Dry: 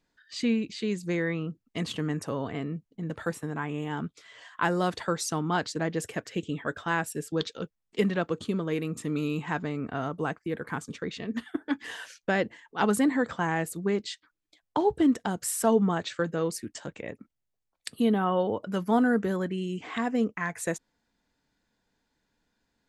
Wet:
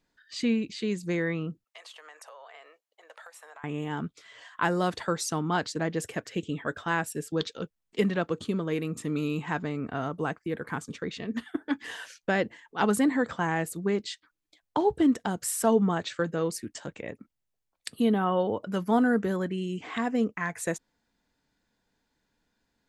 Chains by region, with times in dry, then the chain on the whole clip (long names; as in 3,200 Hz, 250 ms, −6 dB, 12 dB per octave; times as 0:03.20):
0:01.64–0:03.64: Butterworth high-pass 580 Hz + downward compressor 8 to 1, threshold −44 dBFS
whole clip: no processing